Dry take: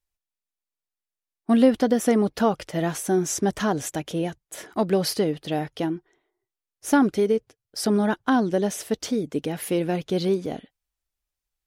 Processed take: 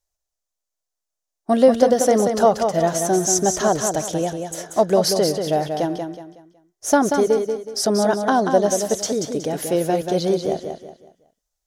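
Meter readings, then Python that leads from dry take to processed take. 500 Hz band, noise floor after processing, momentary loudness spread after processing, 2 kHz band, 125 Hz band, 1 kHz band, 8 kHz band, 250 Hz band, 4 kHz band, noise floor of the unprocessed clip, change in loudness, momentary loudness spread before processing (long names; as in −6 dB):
+7.0 dB, −83 dBFS, 10 LU, +2.0 dB, +1.5 dB, +7.5 dB, +9.5 dB, 0.0 dB, +5.5 dB, below −85 dBFS, +4.5 dB, 9 LU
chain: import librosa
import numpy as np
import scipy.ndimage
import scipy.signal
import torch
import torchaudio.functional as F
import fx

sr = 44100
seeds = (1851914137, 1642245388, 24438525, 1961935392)

y = fx.graphic_eq_15(x, sr, hz=(250, 630, 2500, 6300), db=(-5, 9, -6, 9))
y = fx.echo_feedback(y, sr, ms=185, feedback_pct=34, wet_db=-6.0)
y = F.gain(torch.from_numpy(y), 2.0).numpy()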